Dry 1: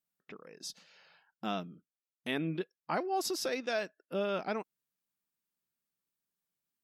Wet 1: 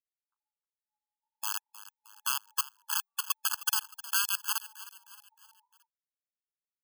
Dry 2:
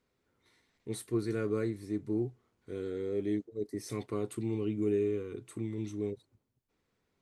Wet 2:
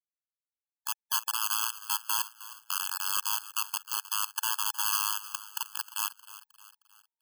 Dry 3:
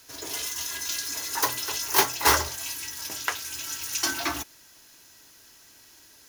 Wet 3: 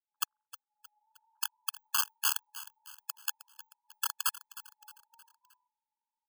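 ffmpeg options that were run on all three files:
-filter_complex "[0:a]afftfilt=real='re*between(b*sr/4096,200,700)':imag='im*between(b*sr/4096,200,700)':win_size=4096:overlap=0.75,acompressor=threshold=-43dB:ratio=3,aeval=exprs='(mod(70.8*val(0)+1,2)-1)/70.8':c=same,crystalizer=i=5.5:c=0,asplit=5[a][b][c][d][e];[b]adelay=311,afreqshift=75,volume=-16dB[f];[c]adelay=622,afreqshift=150,volume=-22.4dB[g];[d]adelay=933,afreqshift=225,volume=-28.8dB[h];[e]adelay=1244,afreqshift=300,volume=-35.1dB[i];[a][f][g][h][i]amix=inputs=5:normalize=0,afftfilt=real='re*eq(mod(floor(b*sr/1024/860),2),1)':imag='im*eq(mod(floor(b*sr/1024/860),2),1)':win_size=1024:overlap=0.75,volume=8.5dB"

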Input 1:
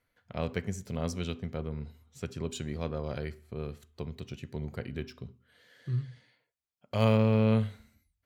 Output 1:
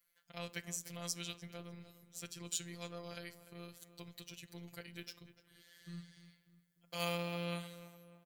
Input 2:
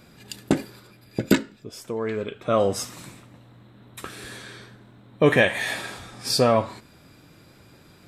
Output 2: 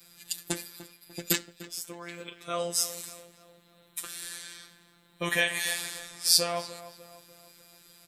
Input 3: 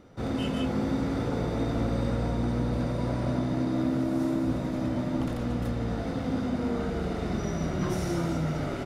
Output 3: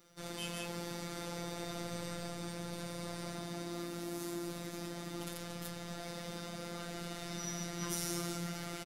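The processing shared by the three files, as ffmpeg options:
-filter_complex "[0:a]asplit=2[a][b];[b]adelay=297,lowpass=f=2.2k:p=1,volume=-14dB,asplit=2[c][d];[d]adelay=297,lowpass=f=2.2k:p=1,volume=0.49,asplit=2[e][f];[f]adelay=297,lowpass=f=2.2k:p=1,volume=0.49,asplit=2[g][h];[h]adelay=297,lowpass=f=2.2k:p=1,volume=0.49,asplit=2[i][j];[j]adelay=297,lowpass=f=2.2k:p=1,volume=0.49[k];[a][c][e][g][i][k]amix=inputs=6:normalize=0,afftfilt=real='hypot(re,im)*cos(PI*b)':imag='0':win_size=1024:overlap=0.75,crystalizer=i=10:c=0,volume=-11.5dB"

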